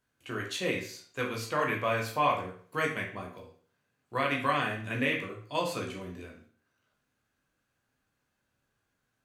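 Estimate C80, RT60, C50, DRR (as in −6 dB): 11.5 dB, 0.50 s, 6.5 dB, −1.0 dB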